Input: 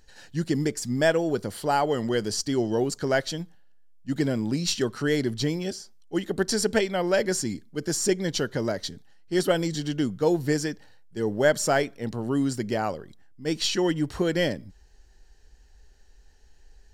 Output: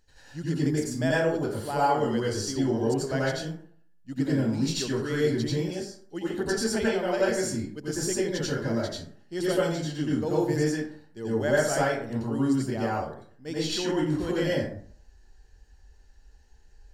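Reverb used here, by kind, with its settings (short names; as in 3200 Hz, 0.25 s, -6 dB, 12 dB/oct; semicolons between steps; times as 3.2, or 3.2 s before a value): plate-style reverb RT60 0.53 s, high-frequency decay 0.5×, pre-delay 75 ms, DRR -7 dB; gain -9.5 dB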